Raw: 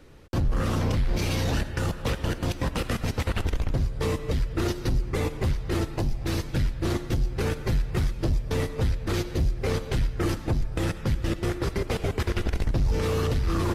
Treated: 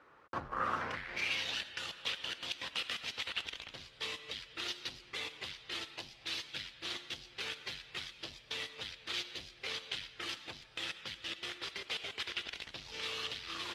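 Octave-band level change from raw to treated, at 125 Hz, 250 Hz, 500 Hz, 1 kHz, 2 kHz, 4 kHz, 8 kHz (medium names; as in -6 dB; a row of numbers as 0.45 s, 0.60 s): -32.5 dB, -24.5 dB, -20.0 dB, -8.0 dB, -3.5 dB, +1.0 dB, -9.5 dB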